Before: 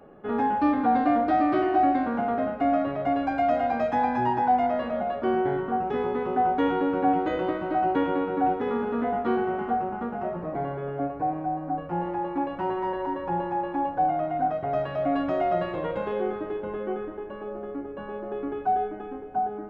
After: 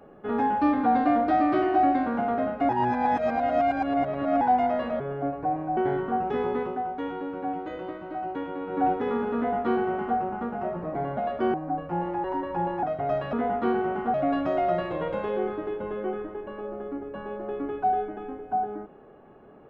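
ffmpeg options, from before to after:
ffmpeg -i in.wav -filter_complex "[0:a]asplit=13[link_01][link_02][link_03][link_04][link_05][link_06][link_07][link_08][link_09][link_10][link_11][link_12][link_13];[link_01]atrim=end=2.692[link_14];[link_02]atrim=start=2.688:end=4.412,asetpts=PTS-STARTPTS,areverse[link_15];[link_03]atrim=start=4.408:end=5.002[link_16];[link_04]atrim=start=10.768:end=11.542[link_17];[link_05]atrim=start=5.368:end=6.49,asetpts=PTS-STARTPTS,afade=type=out:start_time=0.842:duration=0.28:curve=qua:silence=0.375837[link_18];[link_06]atrim=start=6.49:end=8.13,asetpts=PTS-STARTPTS,volume=-8.5dB[link_19];[link_07]atrim=start=8.13:end=10.772,asetpts=PTS-STARTPTS,afade=type=in:duration=0.28:curve=qua:silence=0.375837[link_20];[link_08]atrim=start=4.998:end=5.372[link_21];[link_09]atrim=start=11.538:end=12.242[link_22];[link_10]atrim=start=12.968:end=13.562[link_23];[link_11]atrim=start=14.468:end=14.972[link_24];[link_12]atrim=start=8.958:end=9.772[link_25];[link_13]atrim=start=14.968[link_26];[link_14][link_15]acrossfade=duration=0.004:curve1=hsin:curve2=hsin[link_27];[link_27][link_16]acrossfade=duration=0.004:curve1=hsin:curve2=hsin[link_28];[link_28][link_17]acrossfade=duration=0.004:curve1=hsin:curve2=hsin[link_29];[link_18][link_19][link_20]concat=n=3:v=0:a=1[link_30];[link_29][link_30]acrossfade=duration=0.004:curve1=hsin:curve2=hsin[link_31];[link_31][link_21]acrossfade=duration=0.004:curve1=hsin:curve2=hsin[link_32];[link_32][link_22]acrossfade=duration=0.004:curve1=hsin:curve2=hsin[link_33];[link_33][link_23]acrossfade=duration=0.004:curve1=hsin:curve2=hsin[link_34];[link_34][link_24]acrossfade=duration=0.004:curve1=hsin:curve2=hsin[link_35];[link_35][link_25]acrossfade=duration=0.004:curve1=hsin:curve2=hsin[link_36];[link_36][link_26]acrossfade=duration=0.004:curve1=hsin:curve2=hsin" out.wav

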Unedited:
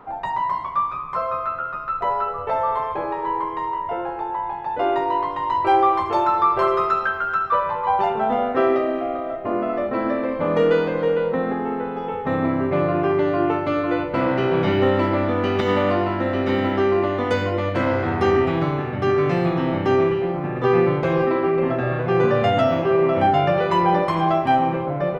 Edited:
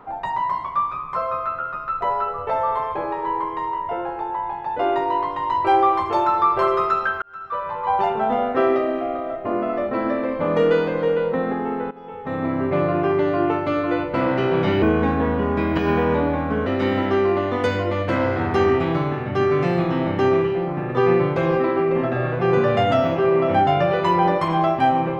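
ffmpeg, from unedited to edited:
ffmpeg -i in.wav -filter_complex "[0:a]asplit=5[link_01][link_02][link_03][link_04][link_05];[link_01]atrim=end=7.22,asetpts=PTS-STARTPTS,afade=type=out:start_time=7.216:duration=0.004:curve=hsin[link_06];[link_02]atrim=start=7.22:end=11.91,asetpts=PTS-STARTPTS,afade=type=in:duration=0.76,afade=type=out:start_time=4.686:duration=0.004:curve=hsin:silence=0.149624[link_07];[link_03]atrim=start=11.91:end=14.824,asetpts=PTS-STARTPTS,afade=type=in:duration=0.78:silence=0.149624[link_08];[link_04]atrim=start=14.82:end=16.33,asetpts=PTS-STARTPTS,asetrate=36162,aresample=44100[link_09];[link_05]atrim=start=16.326[link_10];[link_06][link_07][link_08]concat=n=3:v=0:a=1[link_11];[link_11][link_09]acrossfade=duration=0.004:curve1=hsin:curve2=hsin[link_12];[link_12][link_10]acrossfade=duration=0.004:curve1=hsin:curve2=hsin" out.wav

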